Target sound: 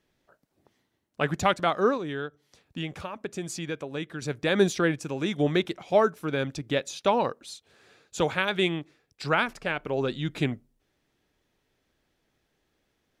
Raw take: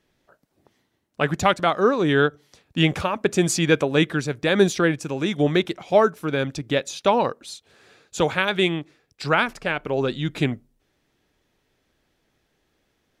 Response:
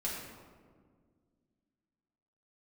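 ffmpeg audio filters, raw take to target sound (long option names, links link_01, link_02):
-filter_complex "[0:a]asettb=1/sr,asplit=3[link_01][link_02][link_03];[link_01]atrim=end=1.974[link_04];[link_02]atrim=start=1.97:end=4.22,asetpts=PTS-STARTPTS,afade=type=in:duration=0.004:curve=qsin,afade=type=out:start_time=2.246:duration=0.004:curve=qsin,acompressor=threshold=-34dB:ratio=2[link_05];[link_03]atrim=start=4.216[link_06];[link_04][link_05]acrossfade=duration=0.004:curve1=hsin:curve2=qsin[link_07];[link_07][link_06]acrossfade=duration=0.004:curve1=qsin:curve2=hsin,volume=-4.5dB"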